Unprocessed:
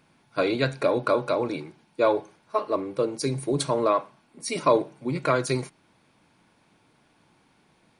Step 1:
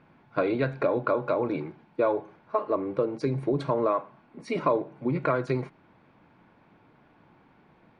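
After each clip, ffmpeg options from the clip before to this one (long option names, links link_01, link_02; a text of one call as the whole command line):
ffmpeg -i in.wav -af "acompressor=threshold=-29dB:ratio=2.5,lowpass=1900,volume=4.5dB" out.wav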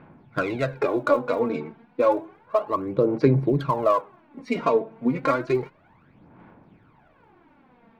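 ffmpeg -i in.wav -af "adynamicsmooth=sensitivity=3:basefreq=2900,aphaser=in_gain=1:out_gain=1:delay=4.5:decay=0.63:speed=0.31:type=sinusoidal,highshelf=frequency=3800:gain=8,volume=1dB" out.wav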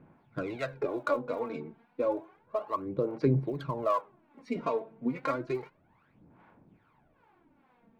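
ffmpeg -i in.wav -filter_complex "[0:a]acrossover=split=550[link_01][link_02];[link_01]aeval=exprs='val(0)*(1-0.7/2+0.7/2*cos(2*PI*2.4*n/s))':channel_layout=same[link_03];[link_02]aeval=exprs='val(0)*(1-0.7/2-0.7/2*cos(2*PI*2.4*n/s))':channel_layout=same[link_04];[link_03][link_04]amix=inputs=2:normalize=0,volume=-5.5dB" out.wav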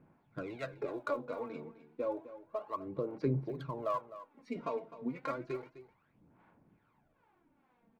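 ffmpeg -i in.wav -af "aecho=1:1:256:0.188,volume=-6.5dB" out.wav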